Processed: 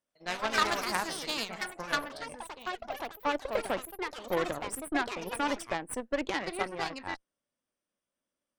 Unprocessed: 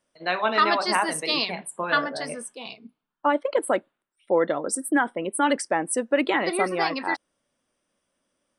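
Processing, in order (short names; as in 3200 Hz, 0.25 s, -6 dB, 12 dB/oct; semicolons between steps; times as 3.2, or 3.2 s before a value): added harmonics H 3 -13 dB, 8 -27 dB, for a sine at -8 dBFS; echoes that change speed 83 ms, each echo +4 st, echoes 3, each echo -6 dB; gain -4 dB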